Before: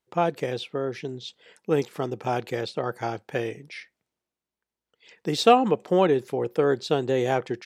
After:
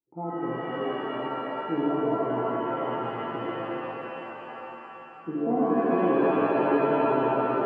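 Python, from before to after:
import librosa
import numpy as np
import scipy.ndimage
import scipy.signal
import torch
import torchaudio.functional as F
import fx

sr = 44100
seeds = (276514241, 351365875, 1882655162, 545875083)

y = fx.formant_cascade(x, sr, vowel='u')
y = fx.rev_shimmer(y, sr, seeds[0], rt60_s=3.6, semitones=7, shimmer_db=-2, drr_db=-7.0)
y = y * librosa.db_to_amplitude(-1.5)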